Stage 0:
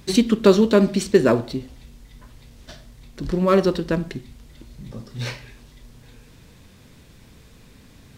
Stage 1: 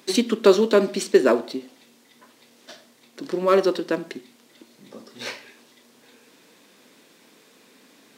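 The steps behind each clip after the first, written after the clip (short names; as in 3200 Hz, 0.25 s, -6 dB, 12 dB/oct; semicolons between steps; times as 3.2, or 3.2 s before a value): HPF 260 Hz 24 dB/oct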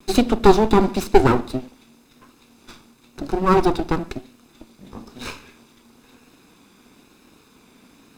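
minimum comb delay 0.8 ms; tilt shelf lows +4 dB, about 910 Hz; vibrato 1 Hz 42 cents; gain +3.5 dB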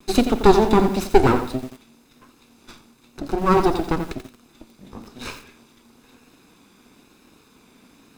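lo-fi delay 87 ms, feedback 35%, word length 6-bit, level -9 dB; gain -1 dB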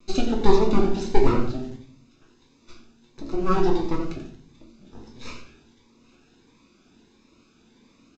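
shoebox room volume 68 m³, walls mixed, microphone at 0.69 m; downsampling 16000 Hz; cascading phaser rising 1.5 Hz; gain -7 dB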